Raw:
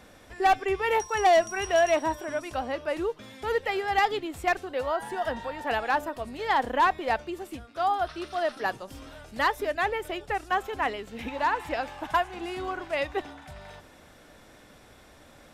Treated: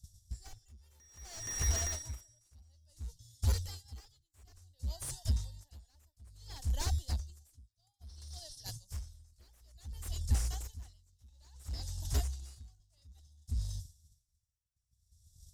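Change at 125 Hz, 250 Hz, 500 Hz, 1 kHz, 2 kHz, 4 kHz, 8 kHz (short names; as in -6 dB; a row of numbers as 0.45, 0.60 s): +9.5, -17.5, -28.5, -30.0, -24.5, -8.5, +2.5 dB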